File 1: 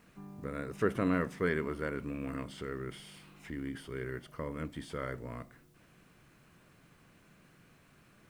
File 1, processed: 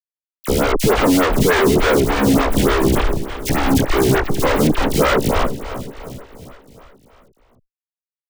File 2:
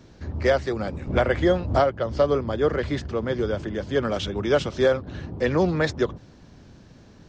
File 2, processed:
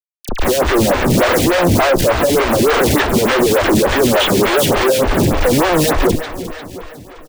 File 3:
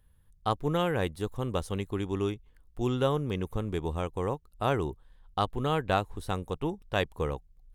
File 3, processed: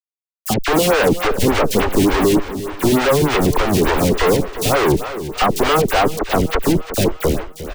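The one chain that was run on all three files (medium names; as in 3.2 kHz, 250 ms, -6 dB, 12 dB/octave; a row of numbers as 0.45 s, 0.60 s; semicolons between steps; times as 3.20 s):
fade out at the end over 2.55 s; steep low-pass 3.9 kHz 96 dB/octave; expander -53 dBFS; high-pass 570 Hz 6 dB/octave; level rider gain up to 11 dB; in parallel at 0 dB: peak limiter -13 dBFS; on the sum: Schmitt trigger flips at -29 dBFS; phase dispersion lows, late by 46 ms, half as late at 1.7 kHz; saturation -18.5 dBFS; on a send: feedback delay 354 ms, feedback 54%, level -12.5 dB; on the sum: lamp-driven phase shifter 3.4 Hz; peak normalisation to -3 dBFS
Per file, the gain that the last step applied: +17.0 dB, +11.0 dB, +13.0 dB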